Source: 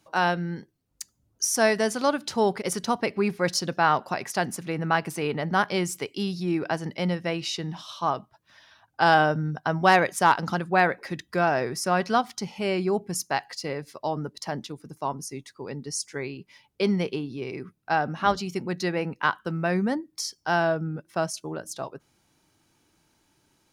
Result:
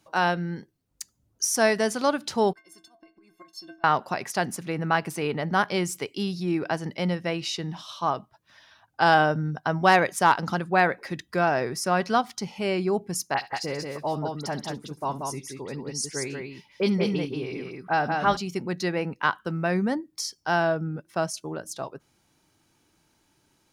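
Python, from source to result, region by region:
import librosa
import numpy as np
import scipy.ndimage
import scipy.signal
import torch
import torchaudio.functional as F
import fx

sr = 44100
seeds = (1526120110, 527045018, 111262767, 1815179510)

y = fx.chain(x, sr, fx.auto_swell(attack_ms=190.0),
    fx.stiff_resonator(f0_hz=320.0, decay_s=0.31, stiffness=0.03), at=(2.53, 3.84))
y = fx.chain(y, sr, fx.dispersion(late='highs', ms=44.0, hz=3000.0),
    fx.echo_multitap(ms=(66, 183), db=(-17.5, -4.0)), at=(13.34, 18.37))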